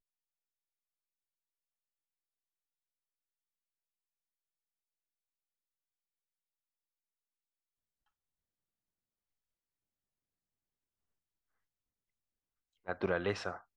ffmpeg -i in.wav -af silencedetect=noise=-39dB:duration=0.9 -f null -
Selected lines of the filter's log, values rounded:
silence_start: 0.00
silence_end: 12.87 | silence_duration: 12.87